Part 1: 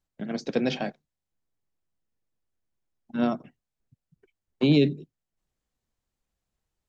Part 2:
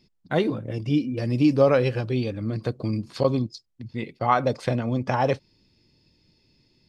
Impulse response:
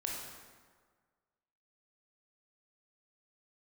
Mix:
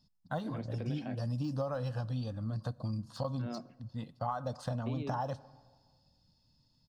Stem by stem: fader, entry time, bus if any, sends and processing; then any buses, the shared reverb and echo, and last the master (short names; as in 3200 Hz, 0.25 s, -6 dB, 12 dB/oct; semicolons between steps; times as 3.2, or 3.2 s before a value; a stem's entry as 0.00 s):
-11.5 dB, 0.25 s, send -20.5 dB, limiter -20 dBFS, peak gain reduction 9.5 dB; bell 5900 Hz -14.5 dB 0.77 oct
-5.0 dB, 0.00 s, send -23 dB, de-esser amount 95%; fixed phaser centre 930 Hz, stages 4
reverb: on, RT60 1.6 s, pre-delay 18 ms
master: compressor 10:1, threshold -31 dBFS, peak gain reduction 10 dB